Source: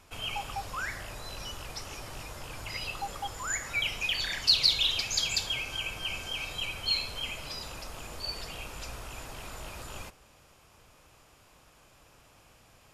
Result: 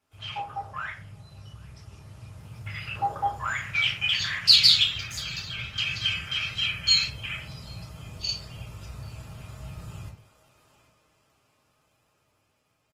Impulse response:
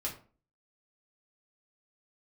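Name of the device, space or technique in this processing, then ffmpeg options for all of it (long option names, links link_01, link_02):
far-field microphone of a smart speaker: -filter_complex "[0:a]aecho=1:1:788:0.211,afwtdn=0.0158,asettb=1/sr,asplit=3[link_01][link_02][link_03];[link_01]atrim=end=4.834[link_04];[link_02]atrim=start=4.83:end=5.78,asetpts=PTS-STARTPTS,afade=type=in:duration=0.004:curve=qsin,afade=type=out:start_time=0.946:duration=0.004:curve=qsin,equalizer=frequency=5100:width_type=o:width=2.6:gain=-13[link_05];[link_03]atrim=start=5.776[link_06];[link_04][link_05]acrossfade=duration=0.004:curve1=hsin:curve2=qsin[link_07];[link_07][link_06]acrossfade=duration=0.004:curve1=qsin:curve2=hsin[link_08];[1:a]atrim=start_sample=2205[link_09];[link_08][link_09]afir=irnorm=-1:irlink=0,highpass=frequency=85:width=0.5412,highpass=frequency=85:width=1.3066,dynaudnorm=framelen=210:gausssize=21:maxgain=8dB" -ar 48000 -c:a libopus -b:a 20k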